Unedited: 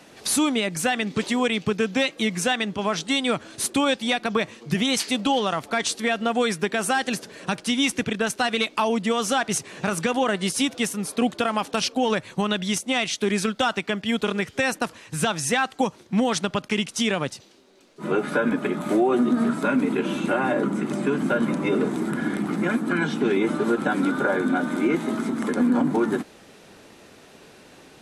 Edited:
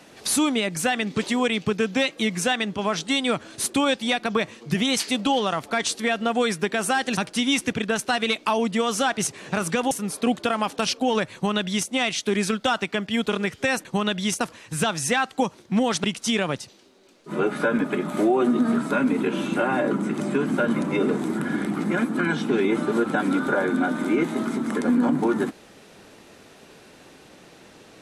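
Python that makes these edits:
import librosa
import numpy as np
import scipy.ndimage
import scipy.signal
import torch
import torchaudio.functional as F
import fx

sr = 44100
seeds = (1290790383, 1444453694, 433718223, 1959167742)

y = fx.edit(x, sr, fx.cut(start_s=7.17, length_s=0.31),
    fx.cut(start_s=10.22, length_s=0.64),
    fx.duplicate(start_s=12.29, length_s=0.54, to_s=14.8),
    fx.cut(start_s=16.45, length_s=0.31), tone=tone)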